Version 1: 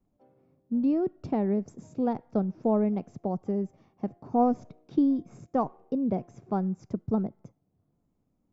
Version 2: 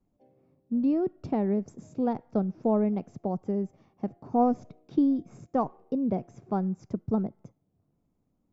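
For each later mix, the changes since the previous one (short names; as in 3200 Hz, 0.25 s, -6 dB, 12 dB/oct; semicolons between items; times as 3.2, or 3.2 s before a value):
background: add Butterworth band-stop 1200 Hz, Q 1.3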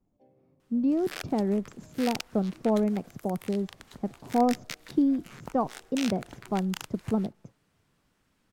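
second sound: unmuted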